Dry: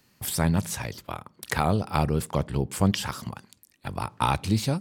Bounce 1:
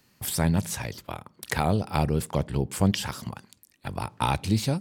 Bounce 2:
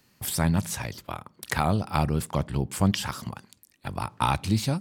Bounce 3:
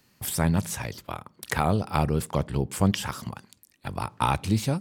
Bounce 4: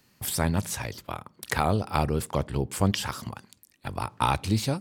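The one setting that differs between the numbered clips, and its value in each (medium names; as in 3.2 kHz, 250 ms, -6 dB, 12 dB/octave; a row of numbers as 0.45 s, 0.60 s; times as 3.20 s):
dynamic bell, frequency: 1.2 kHz, 450 Hz, 4.4 kHz, 170 Hz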